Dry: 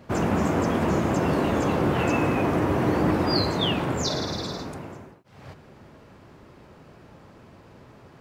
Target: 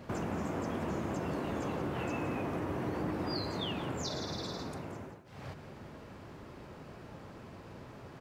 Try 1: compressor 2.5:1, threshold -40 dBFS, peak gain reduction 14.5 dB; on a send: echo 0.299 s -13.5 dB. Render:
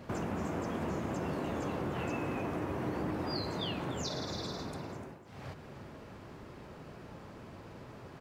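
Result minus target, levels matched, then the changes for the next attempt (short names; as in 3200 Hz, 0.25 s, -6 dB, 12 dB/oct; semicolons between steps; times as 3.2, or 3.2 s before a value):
echo 0.124 s late
change: echo 0.175 s -13.5 dB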